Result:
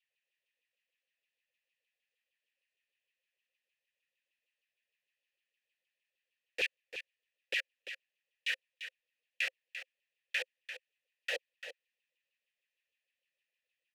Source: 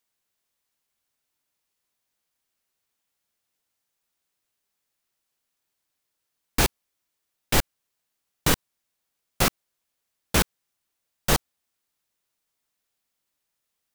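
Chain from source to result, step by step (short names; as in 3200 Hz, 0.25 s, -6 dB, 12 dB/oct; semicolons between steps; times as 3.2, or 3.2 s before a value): resonant high shelf 1700 Hz +9.5 dB, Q 1.5; limiter -9 dBFS, peak gain reduction 8.5 dB; vowel filter e; LFO high-pass saw down 6.5 Hz 340–3200 Hz; echo 0.344 s -10.5 dB; gain -1 dB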